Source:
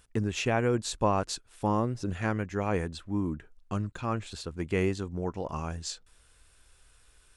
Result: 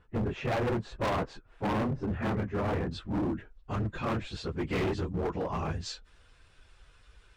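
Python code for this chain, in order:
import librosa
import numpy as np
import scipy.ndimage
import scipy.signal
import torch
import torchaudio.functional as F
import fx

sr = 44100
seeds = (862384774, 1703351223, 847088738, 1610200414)

y = fx.phase_scramble(x, sr, seeds[0], window_ms=50)
y = fx.lowpass(y, sr, hz=fx.steps((0.0, 1500.0), (2.91, 4000.0)), slope=12)
y = np.clip(y, -10.0 ** (-30.5 / 20.0), 10.0 ** (-30.5 / 20.0))
y = y * librosa.db_to_amplitude(3.5)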